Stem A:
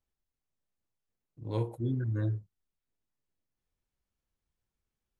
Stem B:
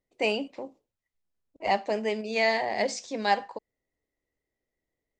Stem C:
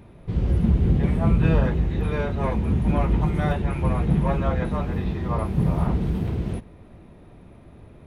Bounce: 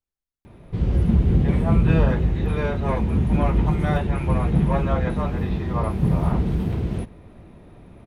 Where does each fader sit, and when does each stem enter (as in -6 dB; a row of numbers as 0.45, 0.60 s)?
-5.5 dB, off, +1.5 dB; 0.00 s, off, 0.45 s